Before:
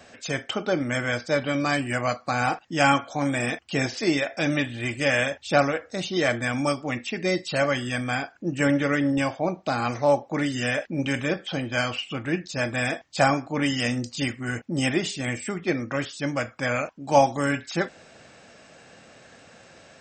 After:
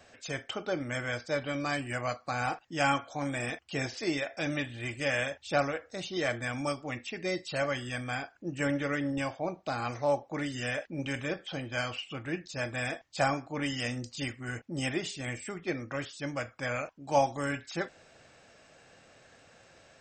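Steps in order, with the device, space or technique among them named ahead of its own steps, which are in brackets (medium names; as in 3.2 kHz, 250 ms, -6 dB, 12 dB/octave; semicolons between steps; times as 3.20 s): low shelf boost with a cut just above (bass shelf 61 Hz +7 dB; peaking EQ 210 Hz -5 dB 0.75 oct); trim -7.5 dB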